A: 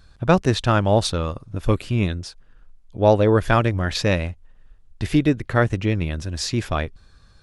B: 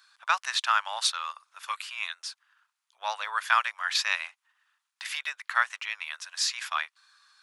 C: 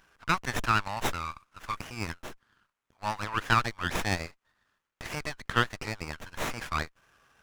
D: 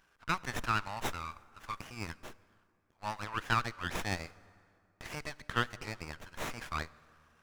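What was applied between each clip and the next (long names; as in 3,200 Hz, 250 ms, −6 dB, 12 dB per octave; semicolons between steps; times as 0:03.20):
Butterworth high-pass 1,000 Hz 36 dB per octave
windowed peak hold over 9 samples
dense smooth reverb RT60 2.5 s, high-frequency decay 0.6×, DRR 19 dB; level −6 dB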